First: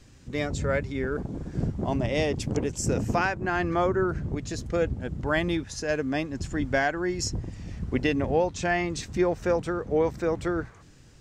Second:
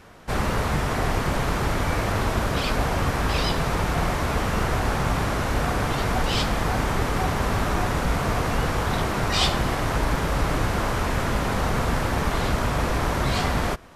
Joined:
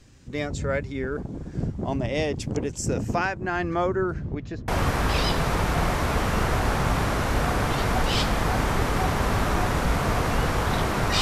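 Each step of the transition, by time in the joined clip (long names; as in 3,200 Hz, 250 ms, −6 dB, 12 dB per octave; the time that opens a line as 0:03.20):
first
0:04.14–0:04.68: low-pass filter 8,200 Hz → 1,400 Hz
0:04.68: continue with second from 0:02.88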